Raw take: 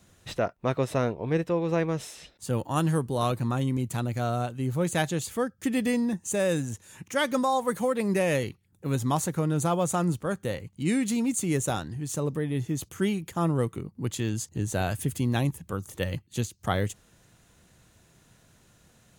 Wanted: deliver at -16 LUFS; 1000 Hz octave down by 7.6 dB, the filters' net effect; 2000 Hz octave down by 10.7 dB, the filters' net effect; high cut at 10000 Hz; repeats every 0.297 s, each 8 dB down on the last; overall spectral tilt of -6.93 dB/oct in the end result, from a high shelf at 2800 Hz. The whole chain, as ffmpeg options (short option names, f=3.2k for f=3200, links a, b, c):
-af "lowpass=10k,equalizer=f=1k:t=o:g=-8,equalizer=f=2k:t=o:g=-7.5,highshelf=f=2.8k:g=-9,aecho=1:1:297|594|891|1188|1485:0.398|0.159|0.0637|0.0255|0.0102,volume=13.5dB"